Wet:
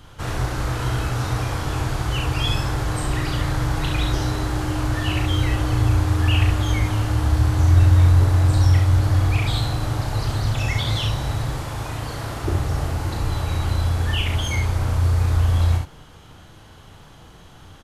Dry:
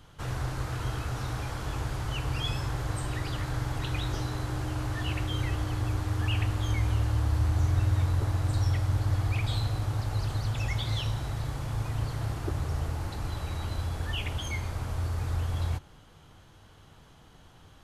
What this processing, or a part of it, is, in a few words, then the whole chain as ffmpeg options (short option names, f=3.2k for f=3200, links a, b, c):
slapback doubling: -filter_complex "[0:a]asettb=1/sr,asplit=3[a][b][c];[a]atrim=end=11.584[d];[b]atrim=start=11.58:end=12.43,asetpts=PTS-STARTPTS,afade=t=in:d=0.004:c=qsin,afade=t=out:st=0.846:d=0.004:c=qsin,lowshelf=f=150:g=-9[e];[c]atrim=start=12.426[f];[d][e]acrossfade=d=0.004:c1=hsin:c2=qsin[g];[g][f]acrossfade=d=0.004:c1=qsin:c2=hsin,asplit=3[h][i][j];[i]adelay=35,volume=-5dB[k];[j]adelay=68,volume=-5dB[l];[h][k][l]amix=inputs=3:normalize=0,volume=7.5dB"